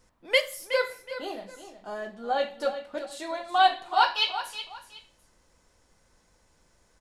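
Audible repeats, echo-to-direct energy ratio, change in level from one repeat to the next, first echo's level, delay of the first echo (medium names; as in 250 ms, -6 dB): 2, -11.0 dB, -11.0 dB, -11.5 dB, 370 ms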